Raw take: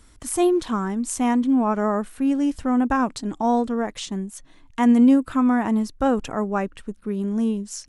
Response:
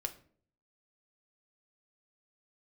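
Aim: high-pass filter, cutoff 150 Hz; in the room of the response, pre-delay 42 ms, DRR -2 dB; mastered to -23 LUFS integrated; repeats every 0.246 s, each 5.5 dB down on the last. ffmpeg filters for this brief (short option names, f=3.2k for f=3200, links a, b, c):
-filter_complex "[0:a]highpass=150,aecho=1:1:246|492|738|984|1230|1476|1722:0.531|0.281|0.149|0.079|0.0419|0.0222|0.0118,asplit=2[a][b];[1:a]atrim=start_sample=2205,adelay=42[c];[b][c]afir=irnorm=-1:irlink=0,volume=2dB[d];[a][d]amix=inputs=2:normalize=0,volume=-5dB"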